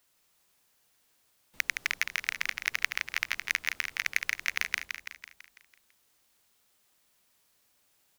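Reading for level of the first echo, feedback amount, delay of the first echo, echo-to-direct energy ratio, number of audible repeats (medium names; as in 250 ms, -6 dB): -6.0 dB, 54%, 166 ms, -4.5 dB, 6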